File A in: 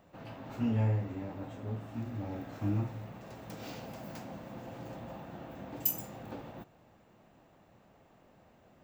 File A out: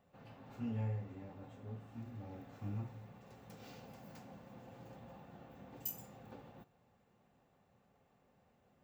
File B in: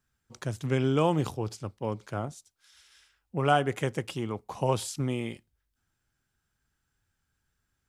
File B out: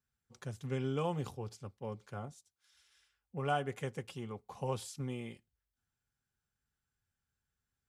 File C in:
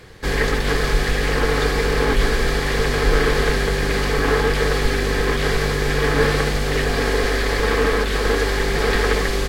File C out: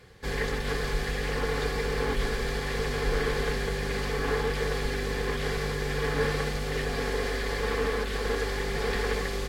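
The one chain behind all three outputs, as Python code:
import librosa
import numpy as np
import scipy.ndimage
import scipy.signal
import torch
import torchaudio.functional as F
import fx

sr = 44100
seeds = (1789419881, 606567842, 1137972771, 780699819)

y = fx.notch_comb(x, sr, f0_hz=320.0)
y = y * librosa.db_to_amplitude(-9.0)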